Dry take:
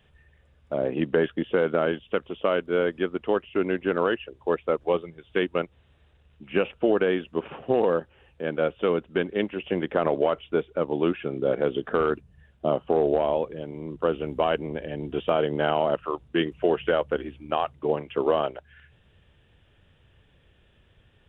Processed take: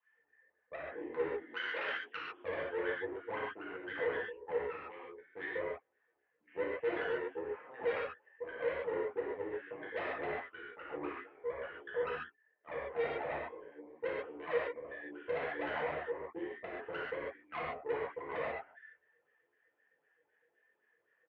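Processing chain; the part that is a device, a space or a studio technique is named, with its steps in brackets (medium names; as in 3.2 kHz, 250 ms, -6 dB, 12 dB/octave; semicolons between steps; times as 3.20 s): doubling 17 ms -11 dB; 11.23–12.94 s: high-pass 1.2 kHz -> 500 Hz 6 dB/octave; wah-wah guitar rig (wah-wah 3.9 Hz 460–1800 Hz, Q 12; valve stage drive 34 dB, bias 0.7; cabinet simulation 110–3400 Hz, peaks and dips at 120 Hz -8 dB, 190 Hz -4 dB, 300 Hz +6 dB, 610 Hz -6 dB, 1.3 kHz -5 dB, 2 kHz +8 dB); 1.54–2.17 s: tilt EQ +4 dB/octave; gated-style reverb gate 170 ms flat, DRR -7 dB; trim -2 dB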